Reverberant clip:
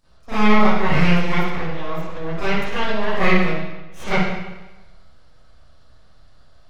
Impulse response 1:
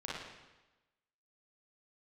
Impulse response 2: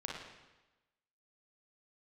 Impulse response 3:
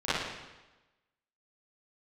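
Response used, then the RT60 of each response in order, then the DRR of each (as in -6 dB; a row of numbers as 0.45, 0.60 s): 3; 1.1, 1.1, 1.1 s; -7.0, -2.5, -16.0 dB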